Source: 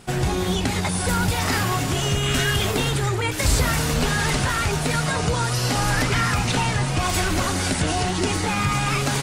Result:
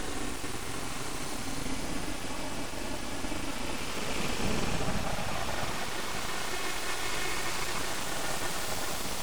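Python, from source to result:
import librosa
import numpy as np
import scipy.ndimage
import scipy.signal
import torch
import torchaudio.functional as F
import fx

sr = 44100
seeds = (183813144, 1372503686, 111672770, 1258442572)

y = fx.paulstretch(x, sr, seeds[0], factor=35.0, window_s=0.05, from_s=6.85)
y = np.abs(y)
y = y * librosa.db_to_amplitude(-8.0)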